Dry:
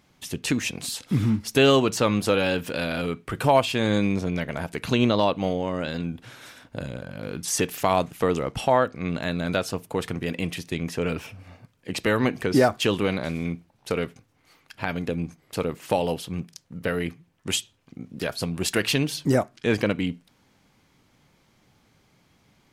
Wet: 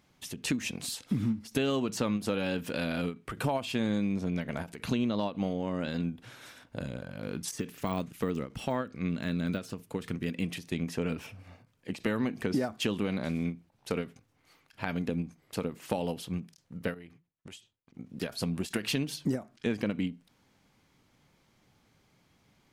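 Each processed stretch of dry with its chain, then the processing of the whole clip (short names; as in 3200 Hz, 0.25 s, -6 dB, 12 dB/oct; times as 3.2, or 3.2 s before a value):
7.51–10.47 de-esser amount 85% + bell 750 Hz -7.5 dB 0.95 oct
16.94–17.98 high shelf 9200 Hz -8 dB + compressor 12:1, threshold -38 dBFS + expander -56 dBFS
whole clip: dynamic EQ 220 Hz, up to +8 dB, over -38 dBFS, Q 1.8; compressor, threshold -21 dBFS; ending taper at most 220 dB/s; gain -5 dB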